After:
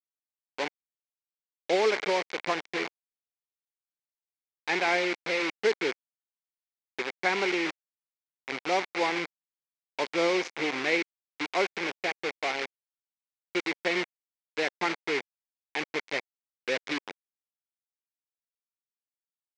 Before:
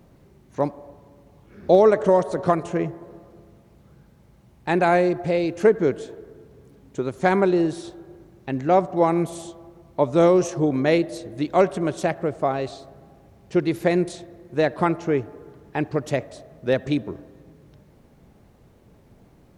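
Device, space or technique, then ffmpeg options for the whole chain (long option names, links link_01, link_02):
hand-held game console: -af "acrusher=bits=3:mix=0:aa=0.000001,highpass=420,equalizer=frequency=620:width_type=q:width=4:gain=-9,equalizer=frequency=1200:width_type=q:width=4:gain=-4,equalizer=frequency=2200:width_type=q:width=4:gain=10,lowpass=frequency=5500:width=0.5412,lowpass=frequency=5500:width=1.3066,volume=-5.5dB"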